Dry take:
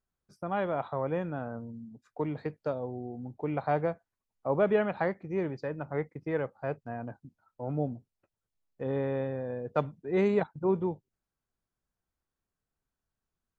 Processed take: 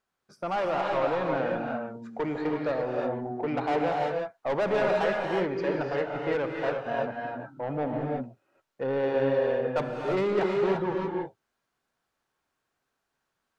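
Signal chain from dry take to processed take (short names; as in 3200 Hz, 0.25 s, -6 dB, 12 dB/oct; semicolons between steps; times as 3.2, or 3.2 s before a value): overdrive pedal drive 25 dB, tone 2700 Hz, clips at -13 dBFS; non-linear reverb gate 0.37 s rising, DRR 0 dB; gain -6.5 dB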